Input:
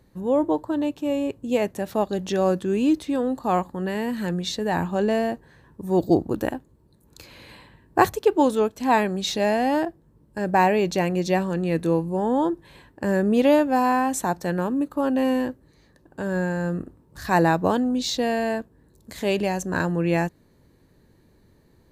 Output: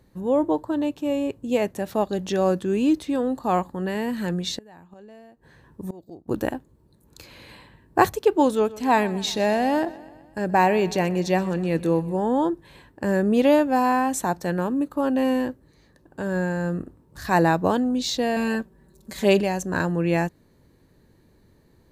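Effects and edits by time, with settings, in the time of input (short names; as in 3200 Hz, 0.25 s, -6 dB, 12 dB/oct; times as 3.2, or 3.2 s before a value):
4.51–6.28 flipped gate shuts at -19 dBFS, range -24 dB
8.52–12.16 feedback echo 0.126 s, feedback 58%, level -19 dB
18.36–19.41 comb 5.2 ms, depth 95%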